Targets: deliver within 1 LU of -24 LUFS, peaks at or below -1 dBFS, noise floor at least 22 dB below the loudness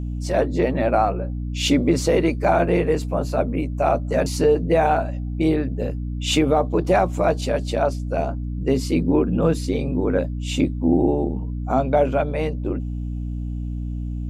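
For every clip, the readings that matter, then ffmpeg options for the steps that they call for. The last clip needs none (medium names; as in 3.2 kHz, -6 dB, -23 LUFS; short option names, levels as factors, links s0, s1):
hum 60 Hz; highest harmonic 300 Hz; hum level -25 dBFS; loudness -21.5 LUFS; peak level -6.5 dBFS; loudness target -24.0 LUFS
-> -af "bandreject=f=60:t=h:w=6,bandreject=f=120:t=h:w=6,bandreject=f=180:t=h:w=6,bandreject=f=240:t=h:w=6,bandreject=f=300:t=h:w=6"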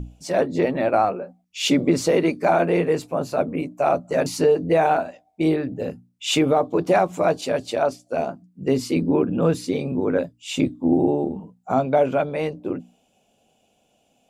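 hum not found; loudness -22.0 LUFS; peak level -7.5 dBFS; loudness target -24.0 LUFS
-> -af "volume=0.794"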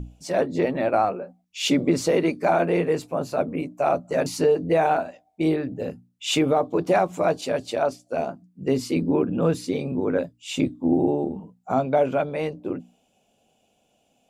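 loudness -24.0 LUFS; peak level -9.5 dBFS; noise floor -67 dBFS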